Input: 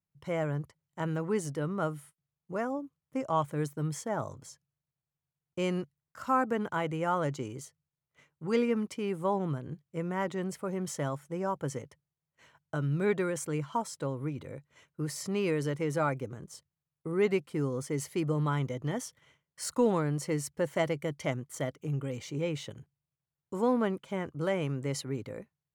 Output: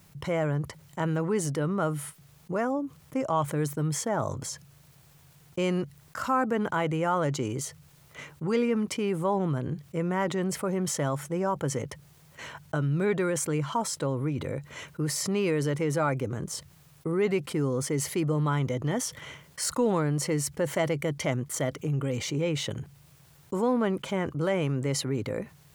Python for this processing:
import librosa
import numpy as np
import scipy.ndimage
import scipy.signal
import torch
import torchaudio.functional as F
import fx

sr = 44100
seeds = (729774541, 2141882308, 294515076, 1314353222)

y = fx.env_flatten(x, sr, amount_pct=50)